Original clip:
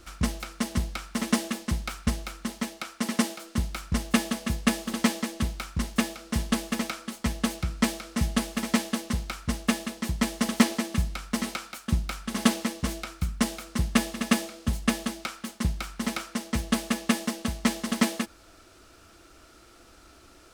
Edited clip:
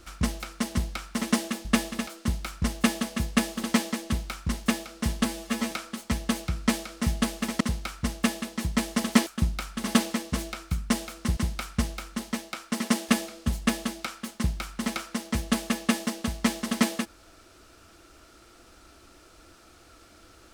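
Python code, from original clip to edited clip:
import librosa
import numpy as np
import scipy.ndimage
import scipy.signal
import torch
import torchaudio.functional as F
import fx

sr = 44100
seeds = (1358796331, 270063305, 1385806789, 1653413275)

y = fx.edit(x, sr, fx.swap(start_s=1.65, length_s=1.72, other_s=13.87, other_length_s=0.42),
    fx.stretch_span(start_s=6.55, length_s=0.31, factor=1.5),
    fx.cut(start_s=8.75, length_s=0.3),
    fx.cut(start_s=10.71, length_s=1.06), tone=tone)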